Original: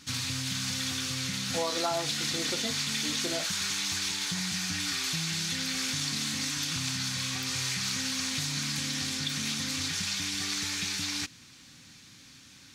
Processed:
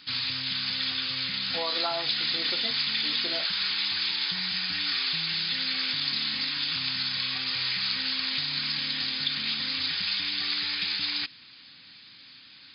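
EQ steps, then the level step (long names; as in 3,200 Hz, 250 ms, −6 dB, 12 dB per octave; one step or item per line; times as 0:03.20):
linear-phase brick-wall low-pass 5,100 Hz
spectral tilt +3 dB per octave
0.0 dB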